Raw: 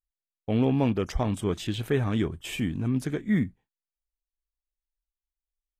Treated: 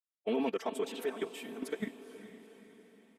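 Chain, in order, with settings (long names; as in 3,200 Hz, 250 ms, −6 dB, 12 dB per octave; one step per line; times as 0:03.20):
high-pass filter 320 Hz 24 dB per octave
high-shelf EQ 4,500 Hz +3 dB
comb filter 4.5 ms, depth 72%
dynamic equaliser 6,300 Hz, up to −4 dB, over −57 dBFS, Q 3.2
output level in coarse steps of 15 dB
phase-vocoder stretch with locked phases 0.55×
feedback delay with all-pass diffusion 455 ms, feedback 51%, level −12.5 dB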